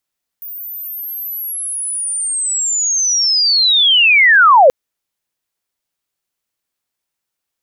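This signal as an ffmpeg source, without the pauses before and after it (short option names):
-f lavfi -i "aevalsrc='pow(10,(-26+22.5*t/4.28)/20)*sin(2*PI*(15000*t-14520*t*t/(2*4.28)))':d=4.28:s=44100"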